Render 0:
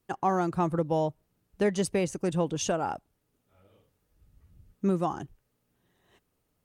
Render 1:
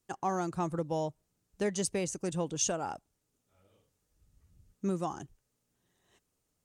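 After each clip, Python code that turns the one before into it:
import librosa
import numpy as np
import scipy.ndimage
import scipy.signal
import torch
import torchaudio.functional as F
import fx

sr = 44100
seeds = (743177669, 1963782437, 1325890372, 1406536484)

y = fx.peak_eq(x, sr, hz=7000.0, db=10.5, octaves=1.2)
y = y * librosa.db_to_amplitude(-6.0)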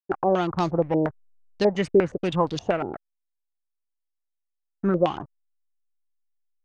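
y = fx.backlash(x, sr, play_db=-42.5)
y = fx.filter_held_lowpass(y, sr, hz=8.5, low_hz=370.0, high_hz=4500.0)
y = y * librosa.db_to_amplitude(8.5)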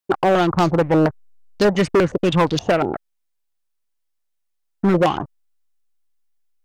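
y = np.clip(10.0 ** (20.5 / 20.0) * x, -1.0, 1.0) / 10.0 ** (20.5 / 20.0)
y = y * librosa.db_to_amplitude(9.0)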